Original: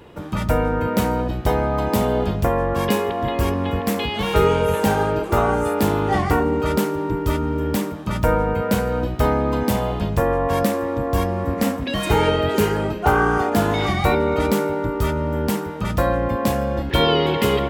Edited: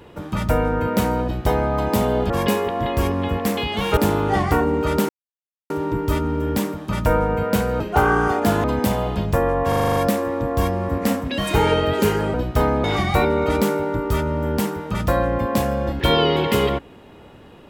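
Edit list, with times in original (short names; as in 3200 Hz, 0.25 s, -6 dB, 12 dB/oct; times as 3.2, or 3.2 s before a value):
2.3–2.72 cut
4.39–5.76 cut
6.88 insert silence 0.61 s
8.98–9.48 swap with 12.9–13.74
10.52 stutter 0.04 s, 8 plays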